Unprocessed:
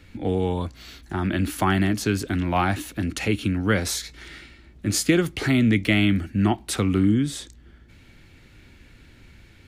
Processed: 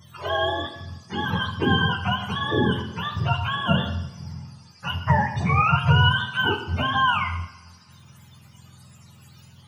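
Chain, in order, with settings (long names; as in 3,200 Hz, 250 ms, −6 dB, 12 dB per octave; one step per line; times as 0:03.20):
frequency axis turned over on the octave scale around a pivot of 550 Hz
coupled-rooms reverb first 0.8 s, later 2.8 s, from −26 dB, DRR 5 dB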